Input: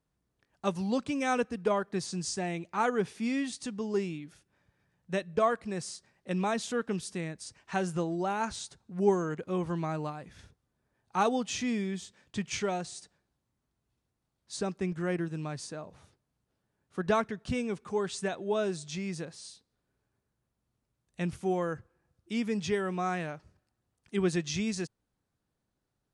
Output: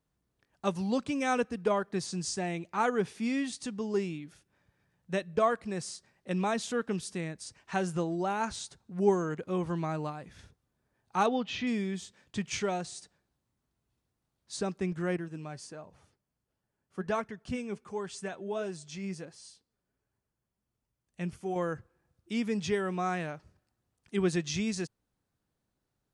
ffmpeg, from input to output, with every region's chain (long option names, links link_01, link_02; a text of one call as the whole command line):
ffmpeg -i in.wav -filter_complex "[0:a]asettb=1/sr,asplit=3[link_01][link_02][link_03];[link_01]atrim=end=11.264[link_04];[link_02]atrim=start=11.26:end=11.67,asetpts=PTS-STARTPTS,afade=type=in:duration=0.004:curve=qsin,afade=type=out:start_time=0.406:duration=0.004:curve=qsin,lowpass=frequency=3600:width=0.5412,lowpass=frequency=3600:width=1.3066,aemphasis=mode=production:type=50fm[link_05];[link_03]atrim=start=11.666[link_06];[link_04][link_05]acrossfade=duration=0.004:curve1=hsin:curve2=qsin[link_07];[link_07][link_06]acrossfade=duration=0.004:curve1=qsin:curve2=hsin,asettb=1/sr,asplit=3[link_08][link_09][link_10];[link_08]atrim=end=15.174[link_11];[link_09]atrim=start=15.17:end=21.56,asetpts=PTS-STARTPTS,afade=type=in:duration=0.004:curve=qsin,afade=type=out:start_time=6.386:duration=0.004:curve=qsin,bandreject=frequency=3800:width=9.8,flanger=delay=1:depth=4.3:regen=67:speed=1.4:shape=sinusoidal[link_12];[link_10]atrim=start=21.556[link_13];[link_11][link_12]acrossfade=duration=0.004:curve1=hsin:curve2=qsin[link_14];[link_14][link_13]acrossfade=duration=0.004:curve1=qsin:curve2=hsin" out.wav